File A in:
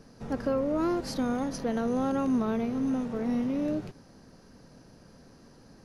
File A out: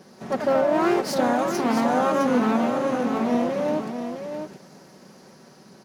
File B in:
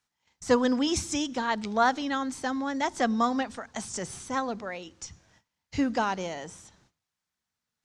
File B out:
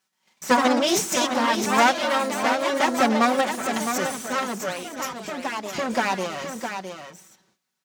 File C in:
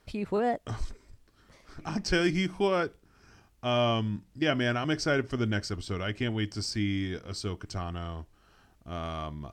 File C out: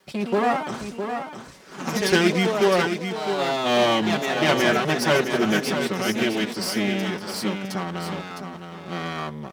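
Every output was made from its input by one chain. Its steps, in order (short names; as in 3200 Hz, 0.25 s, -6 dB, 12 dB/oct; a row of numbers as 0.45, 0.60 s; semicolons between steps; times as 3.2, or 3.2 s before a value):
minimum comb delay 5.3 ms; HPF 170 Hz 12 dB/oct; echoes that change speed 0.127 s, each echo +2 st, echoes 2, each echo -6 dB; on a send: echo 0.66 s -7.5 dB; on the sum: match loudness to -23 LUFS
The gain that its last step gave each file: +7.0, +7.5, +7.5 dB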